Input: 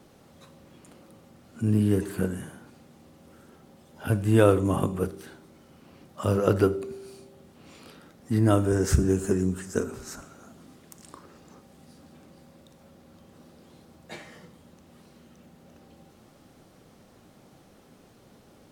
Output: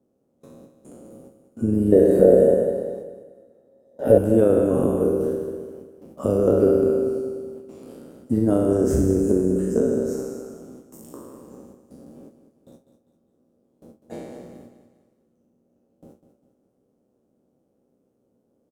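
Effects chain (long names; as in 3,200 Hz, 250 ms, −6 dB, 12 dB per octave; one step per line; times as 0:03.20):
peak hold with a decay on every bin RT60 1.46 s
high-pass filter 49 Hz 12 dB per octave
noise gate with hold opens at −39 dBFS
octave-band graphic EQ 250/500/1,000/2,000/4,000 Hz +9/+10/−3/−9/−10 dB
downward compressor 2 to 1, threshold −15 dBFS, peak gain reduction 7 dB
0:01.92–0:04.18: hollow resonant body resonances 550/1,800/3,800 Hz, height 18 dB, ringing for 25 ms
amplitude modulation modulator 130 Hz, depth 30%
repeating echo 200 ms, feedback 42%, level −11 dB
level −1 dB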